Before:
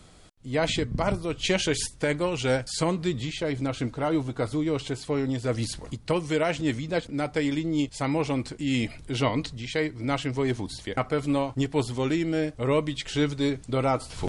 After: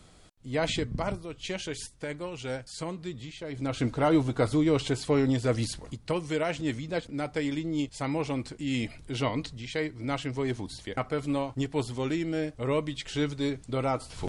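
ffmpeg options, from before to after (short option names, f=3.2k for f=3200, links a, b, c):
-af "volume=9.5dB,afade=t=out:st=0.89:d=0.4:silence=0.446684,afade=t=in:st=3.49:d=0.43:silence=0.237137,afade=t=out:st=5.31:d=0.53:silence=0.473151"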